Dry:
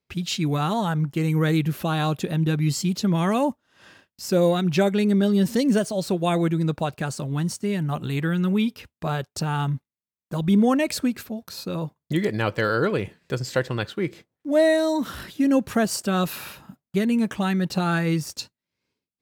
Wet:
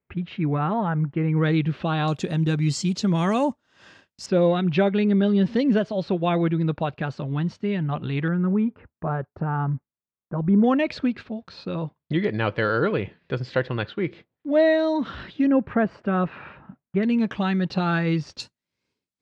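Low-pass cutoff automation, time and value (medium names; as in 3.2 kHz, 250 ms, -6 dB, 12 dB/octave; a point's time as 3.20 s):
low-pass 24 dB/octave
2.2 kHz
from 1.37 s 3.8 kHz
from 2.08 s 7.6 kHz
from 4.26 s 3.6 kHz
from 8.28 s 1.6 kHz
from 10.64 s 3.8 kHz
from 15.47 s 2.2 kHz
from 17.03 s 4.4 kHz
from 18.40 s 9.2 kHz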